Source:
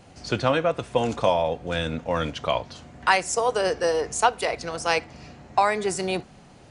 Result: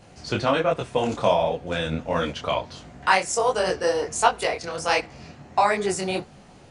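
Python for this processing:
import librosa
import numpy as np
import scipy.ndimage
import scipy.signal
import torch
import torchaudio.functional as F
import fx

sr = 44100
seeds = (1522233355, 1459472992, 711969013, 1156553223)

y = fx.detune_double(x, sr, cents=48)
y = y * librosa.db_to_amplitude(4.5)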